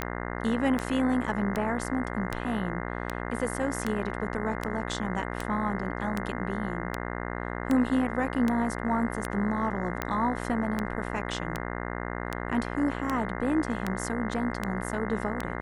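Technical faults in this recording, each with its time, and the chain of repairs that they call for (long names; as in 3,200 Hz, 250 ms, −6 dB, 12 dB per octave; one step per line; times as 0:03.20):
mains buzz 60 Hz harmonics 35 −34 dBFS
scratch tick 78 rpm −14 dBFS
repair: click removal
hum removal 60 Hz, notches 35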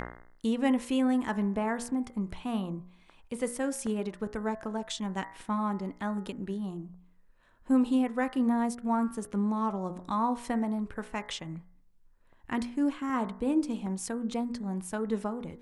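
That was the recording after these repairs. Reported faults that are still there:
none of them is left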